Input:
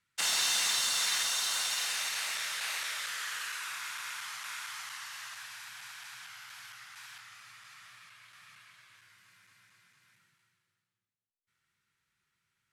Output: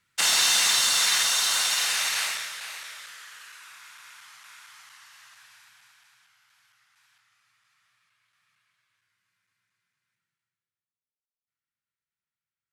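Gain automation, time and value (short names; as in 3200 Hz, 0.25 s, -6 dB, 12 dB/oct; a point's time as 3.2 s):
2.23 s +8 dB
2.51 s -0.5 dB
3.29 s -8 dB
5.56 s -8 dB
6.34 s -16 dB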